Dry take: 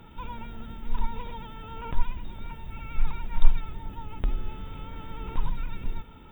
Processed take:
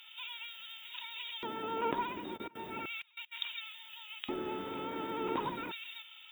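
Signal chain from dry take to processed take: 2.36–3.31 s: trance gate "..x..x.xxxxxx" 194 bpm -24 dB; LFO high-pass square 0.35 Hz 340–3000 Hz; trim +4 dB

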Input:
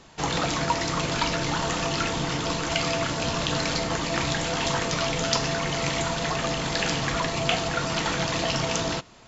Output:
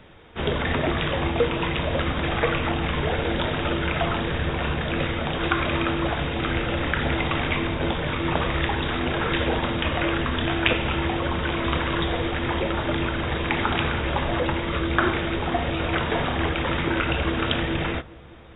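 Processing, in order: speed mistake 15 ips tape played at 7.5 ips; feedback echo behind a low-pass 201 ms, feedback 76%, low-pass 960 Hz, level -23 dB; trim +2 dB

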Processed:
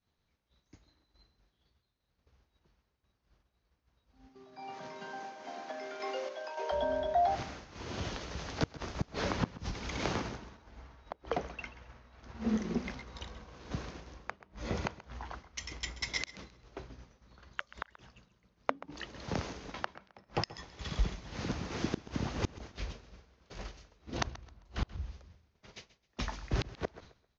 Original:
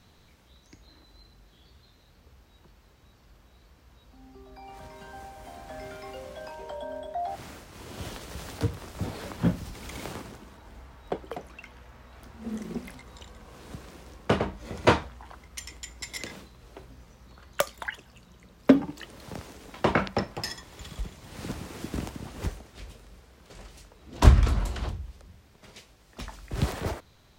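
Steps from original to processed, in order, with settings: Chebyshev low-pass 6.5 kHz, order 6; expander -43 dBFS; 4.28–6.71 s: high-pass 120 Hz -> 400 Hz 24 dB/octave; inverted gate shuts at -22 dBFS, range -35 dB; random-step tremolo; feedback delay 132 ms, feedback 27%, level -17 dB; trim +6.5 dB

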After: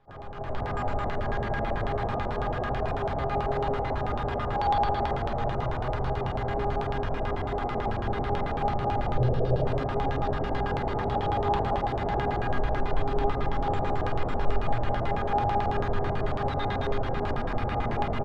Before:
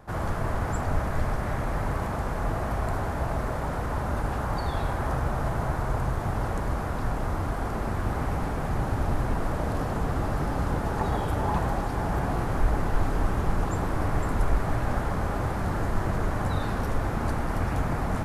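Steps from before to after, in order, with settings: flange 0.3 Hz, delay 7.3 ms, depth 1.6 ms, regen +66%; in parallel at +2 dB: peak limiter -24.5 dBFS, peak gain reduction 9 dB; on the sum: feedback comb 410 Hz, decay 0.69 s, mix 90%; level rider gain up to 13 dB; 9.16–9.65 s: graphic EQ 125/250/500/1000/2000/4000/8000 Hz +10/-4/+11/-8/-11/+4/-5 dB; delay 224 ms -8 dB; on a send at -11.5 dB: reverberation RT60 3.3 s, pre-delay 46 ms; on the sum: LFO low-pass square 9.1 Hz 670–3400 Hz

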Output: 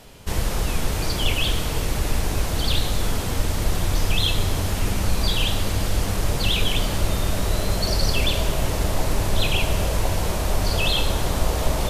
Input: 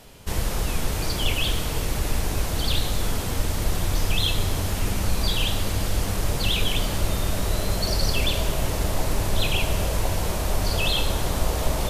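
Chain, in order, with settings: treble shelf 10 kHz -3.5 dB; trim +2 dB

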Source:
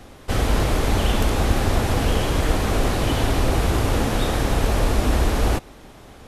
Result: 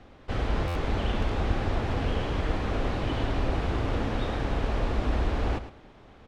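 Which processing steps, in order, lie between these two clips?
low-pass 3.5 kHz 12 dB/octave; on a send: feedback delay 109 ms, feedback 24%, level -12 dB; on the sum: buffer glitch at 0.67 s, samples 512, times 6; trim -8 dB

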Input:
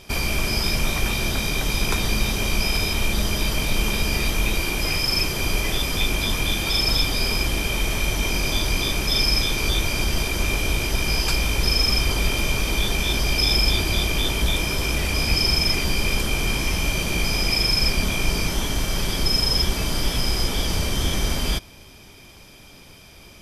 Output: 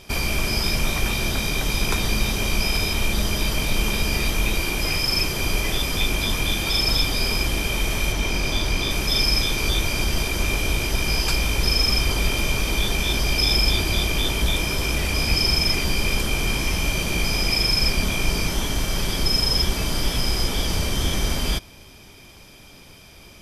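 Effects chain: 8.12–8.91 s: treble shelf 9 kHz -8.5 dB

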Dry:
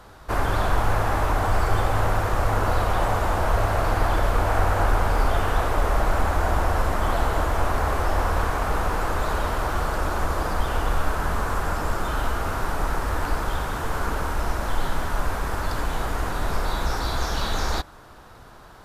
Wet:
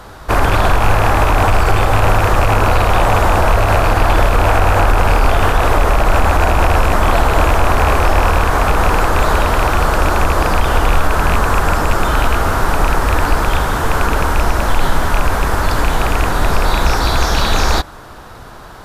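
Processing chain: rattle on loud lows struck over -23 dBFS, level -20 dBFS; loudness maximiser +12.5 dB; trim -1 dB

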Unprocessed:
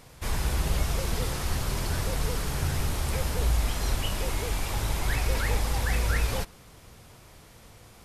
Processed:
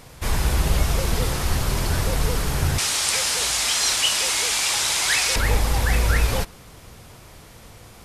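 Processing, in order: 2.78–5.36 s: frequency weighting ITU-R 468; trim +6.5 dB

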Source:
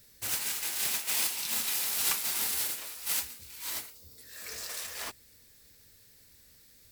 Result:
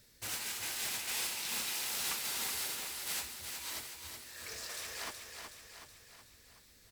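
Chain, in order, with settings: treble shelf 11 kHz -10.5 dB; saturation -30 dBFS, distortion -14 dB; on a send: feedback delay 372 ms, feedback 54%, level -6 dB; on the sum: trim -1.5 dB

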